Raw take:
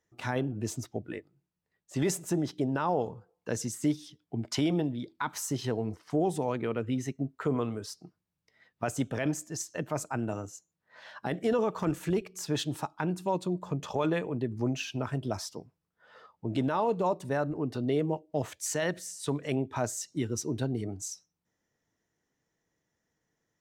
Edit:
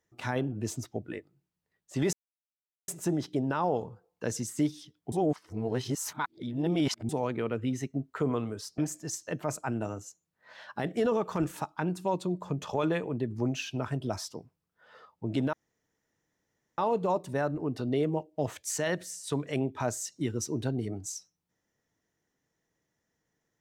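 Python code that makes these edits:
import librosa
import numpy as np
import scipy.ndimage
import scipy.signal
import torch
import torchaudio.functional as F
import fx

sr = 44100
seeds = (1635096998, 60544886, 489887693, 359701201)

y = fx.edit(x, sr, fx.insert_silence(at_s=2.13, length_s=0.75),
    fx.reverse_span(start_s=4.37, length_s=1.97),
    fx.cut(start_s=8.03, length_s=1.22),
    fx.cut(start_s=12.04, length_s=0.74),
    fx.insert_room_tone(at_s=16.74, length_s=1.25), tone=tone)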